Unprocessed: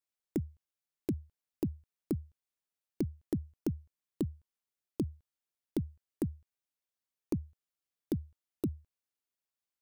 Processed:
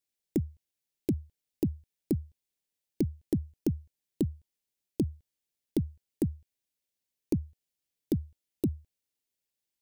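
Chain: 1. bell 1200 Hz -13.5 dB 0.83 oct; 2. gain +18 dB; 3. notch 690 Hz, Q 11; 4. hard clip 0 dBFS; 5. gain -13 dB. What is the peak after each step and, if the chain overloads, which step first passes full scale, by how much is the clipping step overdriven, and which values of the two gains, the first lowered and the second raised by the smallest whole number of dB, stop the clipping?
-21.0, -3.0, -3.5, -3.5, -16.5 dBFS; no overload

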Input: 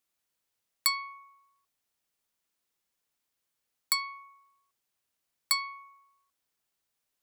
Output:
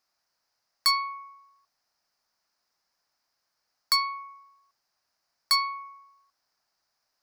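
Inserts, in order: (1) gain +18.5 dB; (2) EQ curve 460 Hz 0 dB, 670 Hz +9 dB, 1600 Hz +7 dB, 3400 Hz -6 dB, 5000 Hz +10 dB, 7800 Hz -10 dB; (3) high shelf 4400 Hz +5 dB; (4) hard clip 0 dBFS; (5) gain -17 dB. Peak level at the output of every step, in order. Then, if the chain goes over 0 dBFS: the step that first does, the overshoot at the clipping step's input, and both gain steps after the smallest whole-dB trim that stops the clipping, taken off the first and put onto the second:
+9.5, +8.5, +10.0, 0.0, -17.0 dBFS; step 1, 10.0 dB; step 1 +8.5 dB, step 5 -7 dB

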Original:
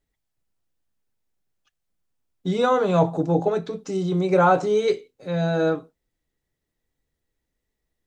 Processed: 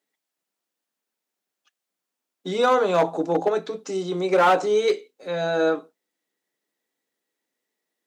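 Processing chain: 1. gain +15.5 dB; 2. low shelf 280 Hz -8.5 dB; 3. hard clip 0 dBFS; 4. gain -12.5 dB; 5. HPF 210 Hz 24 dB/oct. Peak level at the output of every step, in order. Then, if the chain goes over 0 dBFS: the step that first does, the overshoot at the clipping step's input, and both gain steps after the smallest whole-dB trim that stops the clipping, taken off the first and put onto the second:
+9.0, +7.5, 0.0, -12.5, -7.5 dBFS; step 1, 7.5 dB; step 1 +7.5 dB, step 4 -4.5 dB

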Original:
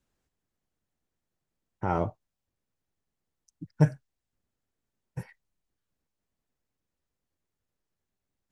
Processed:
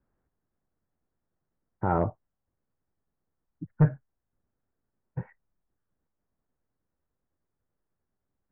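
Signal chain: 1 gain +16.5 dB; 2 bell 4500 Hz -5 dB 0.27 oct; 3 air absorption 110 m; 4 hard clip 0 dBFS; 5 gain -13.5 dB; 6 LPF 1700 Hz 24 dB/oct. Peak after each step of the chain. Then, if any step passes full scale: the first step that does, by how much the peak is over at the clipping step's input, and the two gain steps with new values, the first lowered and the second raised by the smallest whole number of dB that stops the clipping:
+9.0, +9.0, +8.5, 0.0, -13.5, -13.0 dBFS; step 1, 8.5 dB; step 1 +7.5 dB, step 5 -4.5 dB

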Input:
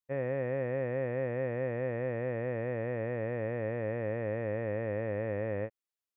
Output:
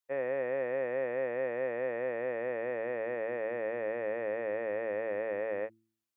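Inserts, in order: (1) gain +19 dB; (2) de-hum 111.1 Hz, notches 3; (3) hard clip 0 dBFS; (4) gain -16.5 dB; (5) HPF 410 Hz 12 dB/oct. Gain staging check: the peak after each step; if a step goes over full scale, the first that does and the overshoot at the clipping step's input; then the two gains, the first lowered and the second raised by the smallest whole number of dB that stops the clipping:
-4.0, -4.0, -4.0, -20.5, -24.0 dBFS; no overload

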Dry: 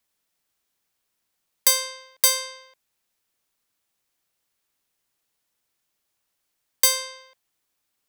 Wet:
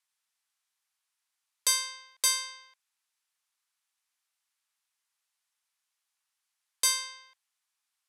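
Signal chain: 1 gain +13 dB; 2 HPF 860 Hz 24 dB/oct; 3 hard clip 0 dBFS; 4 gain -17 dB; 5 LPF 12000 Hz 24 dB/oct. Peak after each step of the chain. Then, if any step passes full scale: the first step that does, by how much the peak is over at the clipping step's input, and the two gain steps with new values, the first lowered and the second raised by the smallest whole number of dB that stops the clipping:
+9.5, +9.5, 0.0, -17.0, -14.5 dBFS; step 1, 9.5 dB; step 1 +3 dB, step 4 -7 dB

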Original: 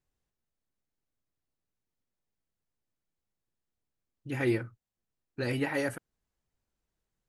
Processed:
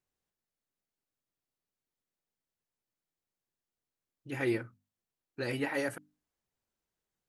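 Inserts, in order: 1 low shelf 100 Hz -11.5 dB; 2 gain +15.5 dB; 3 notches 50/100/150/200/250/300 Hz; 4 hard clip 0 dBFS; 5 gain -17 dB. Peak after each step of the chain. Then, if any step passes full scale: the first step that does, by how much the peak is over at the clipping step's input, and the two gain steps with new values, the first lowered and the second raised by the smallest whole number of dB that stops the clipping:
-18.5, -3.0, -3.0, -3.0, -20.0 dBFS; no overload

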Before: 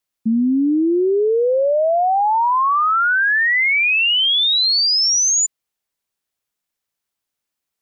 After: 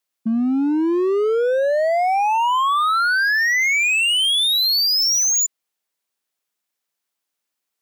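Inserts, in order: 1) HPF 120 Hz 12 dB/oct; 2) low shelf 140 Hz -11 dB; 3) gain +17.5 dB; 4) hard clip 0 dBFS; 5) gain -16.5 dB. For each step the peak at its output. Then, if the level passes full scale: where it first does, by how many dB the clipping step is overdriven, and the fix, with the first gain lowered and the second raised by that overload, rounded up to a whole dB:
-13.0, -13.0, +4.5, 0.0, -16.5 dBFS; step 3, 4.5 dB; step 3 +12.5 dB, step 5 -11.5 dB

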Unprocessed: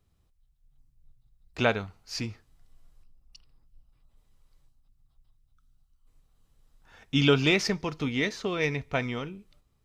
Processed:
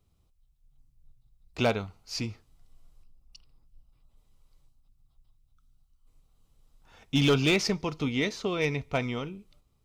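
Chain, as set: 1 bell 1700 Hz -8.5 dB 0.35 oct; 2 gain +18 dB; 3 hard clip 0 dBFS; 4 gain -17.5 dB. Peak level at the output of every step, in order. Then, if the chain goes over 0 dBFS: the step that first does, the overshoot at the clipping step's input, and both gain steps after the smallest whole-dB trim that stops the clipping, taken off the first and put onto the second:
-9.0, +9.0, 0.0, -17.5 dBFS; step 2, 9.0 dB; step 2 +9 dB, step 4 -8.5 dB

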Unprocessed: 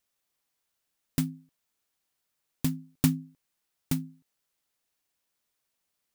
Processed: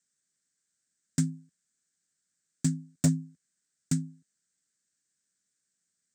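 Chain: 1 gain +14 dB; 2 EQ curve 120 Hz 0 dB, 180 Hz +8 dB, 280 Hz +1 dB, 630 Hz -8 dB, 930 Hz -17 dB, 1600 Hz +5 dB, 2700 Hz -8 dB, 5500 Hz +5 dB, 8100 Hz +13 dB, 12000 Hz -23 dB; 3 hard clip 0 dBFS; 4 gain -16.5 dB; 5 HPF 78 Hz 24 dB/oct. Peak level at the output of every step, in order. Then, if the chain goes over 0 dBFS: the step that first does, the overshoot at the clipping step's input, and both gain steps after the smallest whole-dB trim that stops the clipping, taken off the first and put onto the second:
+7.0, +7.5, 0.0, -16.5, -10.5 dBFS; step 1, 7.5 dB; step 1 +6 dB, step 4 -8.5 dB

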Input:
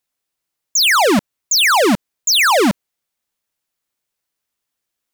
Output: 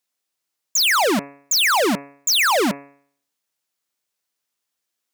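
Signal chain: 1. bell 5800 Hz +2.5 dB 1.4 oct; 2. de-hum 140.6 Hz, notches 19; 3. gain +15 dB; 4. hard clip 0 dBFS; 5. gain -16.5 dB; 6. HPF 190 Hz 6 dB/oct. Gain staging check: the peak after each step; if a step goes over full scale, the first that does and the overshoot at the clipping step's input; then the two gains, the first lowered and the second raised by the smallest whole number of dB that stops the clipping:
-9.0, -7.0, +8.0, 0.0, -16.5, -11.0 dBFS; step 3, 8.0 dB; step 3 +7 dB, step 5 -8.5 dB

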